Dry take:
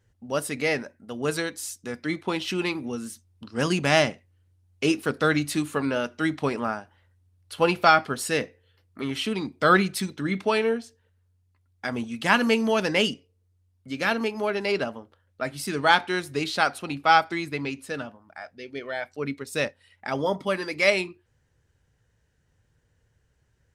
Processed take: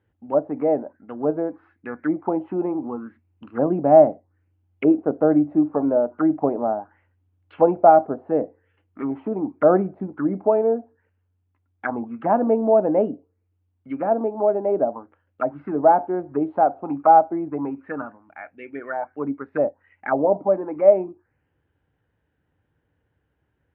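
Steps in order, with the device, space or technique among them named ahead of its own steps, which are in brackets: envelope filter bass rig (touch-sensitive low-pass 660–3600 Hz down, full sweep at -24.5 dBFS; cabinet simulation 70–2100 Hz, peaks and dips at 120 Hz -5 dB, 300 Hz +9 dB, 800 Hz +4 dB, 1.9 kHz -4 dB); trim -1.5 dB

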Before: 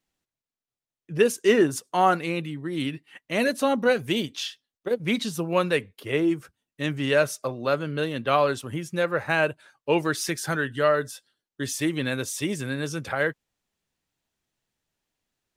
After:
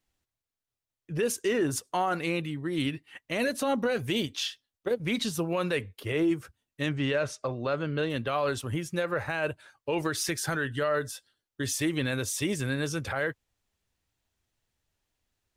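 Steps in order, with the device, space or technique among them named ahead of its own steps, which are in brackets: car stereo with a boomy subwoofer (resonant low shelf 120 Hz +7 dB, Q 1.5; peak limiter -19 dBFS, peak gain reduction 11 dB); 6.89–8.10 s: distance through air 82 m

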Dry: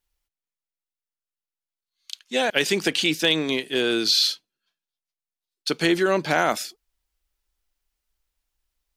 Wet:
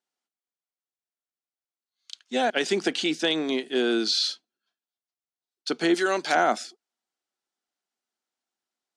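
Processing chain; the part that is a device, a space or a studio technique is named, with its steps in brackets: 5.94–6.35 s: tilt EQ +3.5 dB/octave; television speaker (cabinet simulation 180–8700 Hz, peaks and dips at 240 Hz +7 dB, 370 Hz +5 dB, 730 Hz +8 dB, 1.4 kHz +4 dB, 2.5 kHz -3 dB); trim -5 dB

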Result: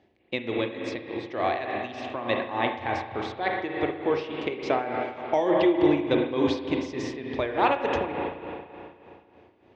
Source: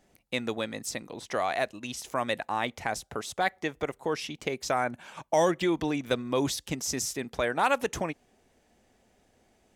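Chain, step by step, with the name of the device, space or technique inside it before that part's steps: combo amplifier with spring reverb and tremolo (spring tank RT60 2.7 s, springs 34/53 ms, chirp 50 ms, DRR 0.5 dB; tremolo 3.4 Hz, depth 66%; cabinet simulation 76–3900 Hz, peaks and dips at 91 Hz +9 dB, 170 Hz -7 dB, 350 Hz +8 dB, 1.4 kHz -7 dB); trim +3 dB

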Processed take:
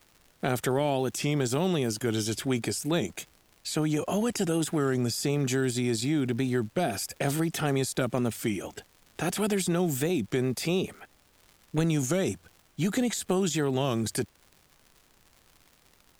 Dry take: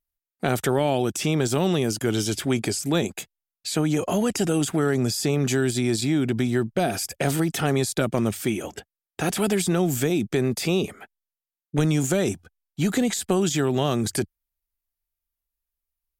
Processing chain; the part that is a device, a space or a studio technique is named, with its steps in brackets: warped LP (warped record 33 1/3 rpm, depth 100 cents; crackle 140 per s -38 dBFS; pink noise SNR 35 dB); trim -4.5 dB

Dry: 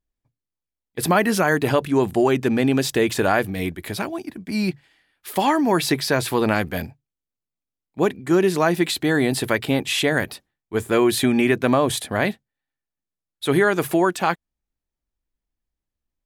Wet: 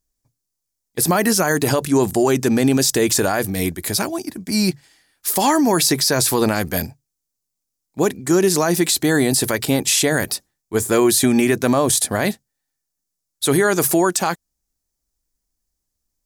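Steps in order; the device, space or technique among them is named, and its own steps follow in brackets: over-bright horn tweeter (resonant high shelf 4.2 kHz +10.5 dB, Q 1.5; peak limiter -11 dBFS, peak gain reduction 11 dB); trim +4 dB

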